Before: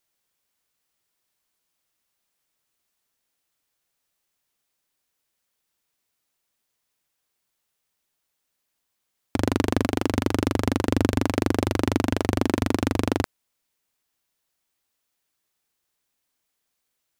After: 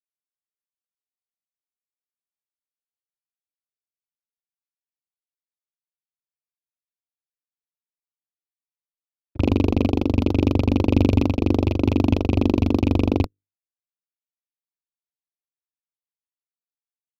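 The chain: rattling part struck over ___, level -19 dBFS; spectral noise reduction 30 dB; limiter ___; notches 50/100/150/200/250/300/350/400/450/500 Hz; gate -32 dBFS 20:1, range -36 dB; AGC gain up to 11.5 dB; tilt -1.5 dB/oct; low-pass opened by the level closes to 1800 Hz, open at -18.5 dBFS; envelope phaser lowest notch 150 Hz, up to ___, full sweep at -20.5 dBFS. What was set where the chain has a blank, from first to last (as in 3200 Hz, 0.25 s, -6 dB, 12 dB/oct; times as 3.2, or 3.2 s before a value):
-22 dBFS, -15 dBFS, 1700 Hz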